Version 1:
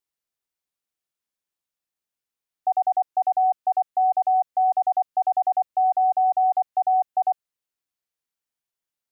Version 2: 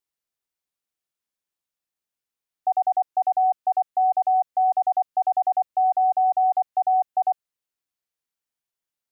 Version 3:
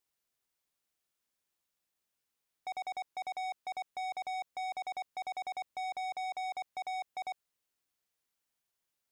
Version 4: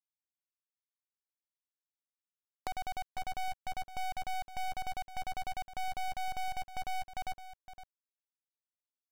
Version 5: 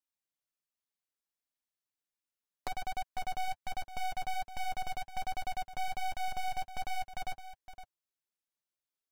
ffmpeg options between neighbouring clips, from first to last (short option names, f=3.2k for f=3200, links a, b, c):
-af anull
-af "alimiter=limit=-24dB:level=0:latency=1:release=44,asoftclip=type=tanh:threshold=-39dB,volume=3dB"
-filter_complex "[0:a]asplit=2[a][b];[b]acompressor=threshold=-48dB:ratio=12,volume=3dB[c];[a][c]amix=inputs=2:normalize=0,acrusher=bits=6:dc=4:mix=0:aa=0.000001,aecho=1:1:513:0.224,volume=2dB"
-af "flanger=delay=3:depth=4.3:regen=-27:speed=1.3:shape=triangular,volume=4.5dB"